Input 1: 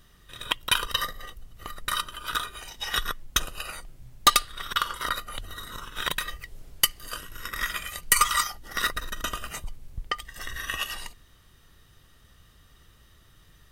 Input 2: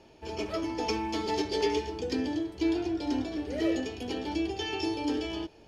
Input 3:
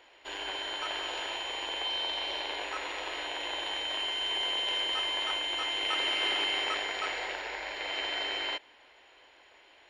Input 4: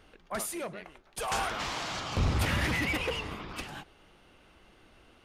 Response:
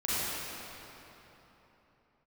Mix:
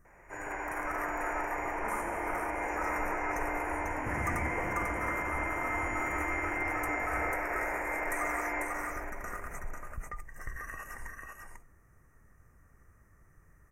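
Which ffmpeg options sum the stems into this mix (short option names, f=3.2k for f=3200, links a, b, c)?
-filter_complex "[0:a]alimiter=limit=-21.5dB:level=0:latency=1:release=35,volume=-5.5dB,asplit=2[a][b];[b]volume=-3.5dB[c];[1:a]acompressor=threshold=-33dB:ratio=6,asubboost=boost=9.5:cutoff=130,adelay=1850,volume=-11dB[d];[2:a]alimiter=level_in=1.5dB:limit=-24dB:level=0:latency=1,volume=-1.5dB,adelay=50,volume=-3dB,asplit=3[e][f][g];[f]volume=-3.5dB[h];[g]volume=-5.5dB[i];[3:a]adelay=1500,volume=-10dB,asplit=3[j][k][l];[j]atrim=end=2.16,asetpts=PTS-STARTPTS,afade=t=out:st=2.156:d=0.004:c=hsin[m];[k]atrim=start=2.16:end=4.06,asetpts=PTS-STARTPTS,volume=0[n];[l]atrim=start=4.06,asetpts=PTS-STARTPTS,afade=t=in:d=0.004:c=hsin[o];[m][n][o]concat=n=3:v=0:a=1,asplit=2[p][q];[q]volume=-7dB[r];[4:a]atrim=start_sample=2205[s];[h][r]amix=inputs=2:normalize=0[t];[t][s]afir=irnorm=-1:irlink=0[u];[c][i]amix=inputs=2:normalize=0,aecho=0:1:494:1[v];[a][d][e][p][u][v]amix=inputs=6:normalize=0,asuperstop=centerf=3700:order=8:qfactor=0.99,highshelf=f=4.5k:g=-8.5"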